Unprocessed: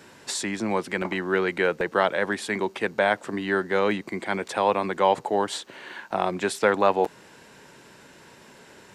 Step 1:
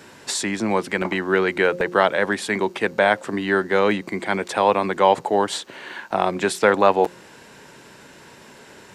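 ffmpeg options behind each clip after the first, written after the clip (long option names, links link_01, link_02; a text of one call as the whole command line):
ffmpeg -i in.wav -af "bandreject=frequency=177.8:width_type=h:width=4,bandreject=frequency=355.6:width_type=h:width=4,bandreject=frequency=533.4:width_type=h:width=4,volume=4.5dB" out.wav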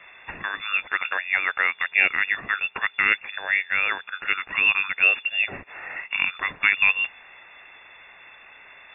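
ffmpeg -i in.wav -af "afftfilt=real='re*(1-between(b*sr/4096,150,800))':imag='im*(1-between(b*sr/4096,150,800))':win_size=4096:overlap=0.75,lowpass=frequency=3100:width_type=q:width=0.5098,lowpass=frequency=3100:width_type=q:width=0.6013,lowpass=frequency=3100:width_type=q:width=0.9,lowpass=frequency=3100:width_type=q:width=2.563,afreqshift=-3600,volume=1.5dB" out.wav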